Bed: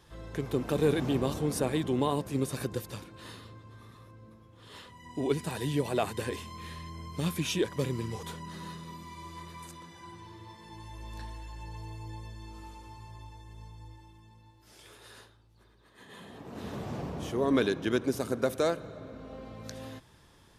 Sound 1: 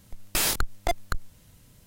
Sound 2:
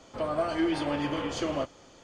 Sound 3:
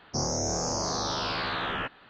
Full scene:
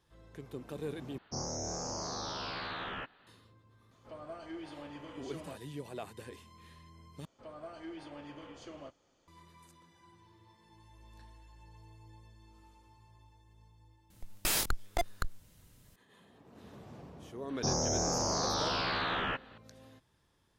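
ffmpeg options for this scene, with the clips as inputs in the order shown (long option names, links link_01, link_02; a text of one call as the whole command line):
ffmpeg -i bed.wav -i cue0.wav -i cue1.wav -i cue2.wav -filter_complex "[3:a]asplit=2[link_01][link_02];[2:a]asplit=2[link_03][link_04];[0:a]volume=-13.5dB[link_05];[link_02]acontrast=89[link_06];[link_05]asplit=3[link_07][link_08][link_09];[link_07]atrim=end=1.184[link_10];[link_01]atrim=end=2.09,asetpts=PTS-STARTPTS,volume=-9dB[link_11];[link_08]atrim=start=3.266:end=7.254[link_12];[link_04]atrim=end=2.03,asetpts=PTS-STARTPTS,volume=-18dB[link_13];[link_09]atrim=start=9.276[link_14];[link_03]atrim=end=2.03,asetpts=PTS-STARTPTS,volume=-17dB,afade=type=in:duration=0.004:curve=hsin,afade=type=out:start_time=2.026:duration=0.004:curve=hsin,adelay=3910[link_15];[1:a]atrim=end=1.86,asetpts=PTS-STARTPTS,volume=-6dB,afade=type=in:duration=0.004:curve=hsin,afade=type=out:start_time=1.856:duration=0.004:curve=hsin,adelay=14100[link_16];[link_06]atrim=end=2.09,asetpts=PTS-STARTPTS,volume=-9.5dB,afade=type=in:duration=0.004:curve=hsin,afade=type=out:start_time=2.086:duration=0.004:curve=hsin,adelay=17490[link_17];[link_10][link_11]acrossfade=duration=0.004:curve1=hsin:curve2=hsin[link_18];[link_18][link_12]acrossfade=duration=0.004:curve1=hsin:curve2=hsin[link_19];[link_19][link_13]acrossfade=duration=0.004:curve1=hsin:curve2=hsin[link_20];[link_20][link_14]acrossfade=duration=0.004:curve1=hsin:curve2=hsin[link_21];[link_21][link_15][link_16][link_17]amix=inputs=4:normalize=0" out.wav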